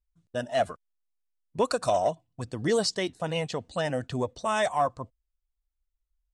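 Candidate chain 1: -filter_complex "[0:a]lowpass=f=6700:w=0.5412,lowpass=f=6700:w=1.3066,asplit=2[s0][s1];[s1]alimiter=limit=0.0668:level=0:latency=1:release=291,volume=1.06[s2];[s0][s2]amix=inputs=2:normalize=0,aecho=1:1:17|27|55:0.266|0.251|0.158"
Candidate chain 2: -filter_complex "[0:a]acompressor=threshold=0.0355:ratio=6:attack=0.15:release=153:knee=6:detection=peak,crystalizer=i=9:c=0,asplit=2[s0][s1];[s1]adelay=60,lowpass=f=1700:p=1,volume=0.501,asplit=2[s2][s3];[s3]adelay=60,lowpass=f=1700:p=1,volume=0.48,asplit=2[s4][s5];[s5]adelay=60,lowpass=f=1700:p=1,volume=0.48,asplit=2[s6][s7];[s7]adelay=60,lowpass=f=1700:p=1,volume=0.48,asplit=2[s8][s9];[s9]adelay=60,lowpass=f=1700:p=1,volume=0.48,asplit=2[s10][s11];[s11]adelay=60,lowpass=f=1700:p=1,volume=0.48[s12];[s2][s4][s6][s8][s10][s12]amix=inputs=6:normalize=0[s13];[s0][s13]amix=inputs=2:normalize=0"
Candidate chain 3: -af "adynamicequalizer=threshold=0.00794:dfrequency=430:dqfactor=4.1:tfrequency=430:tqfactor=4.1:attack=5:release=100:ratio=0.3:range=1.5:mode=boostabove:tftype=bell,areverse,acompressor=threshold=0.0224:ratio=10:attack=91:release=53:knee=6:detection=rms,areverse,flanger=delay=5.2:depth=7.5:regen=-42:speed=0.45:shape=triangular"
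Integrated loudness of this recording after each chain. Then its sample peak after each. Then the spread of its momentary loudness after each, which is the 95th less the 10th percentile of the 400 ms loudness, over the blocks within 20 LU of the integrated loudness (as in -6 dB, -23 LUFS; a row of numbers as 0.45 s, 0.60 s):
-25.0 LUFS, -28.5 LUFS, -38.0 LUFS; -9.5 dBFS, -8.0 dBFS, -22.0 dBFS; 11 LU, 16 LU, 9 LU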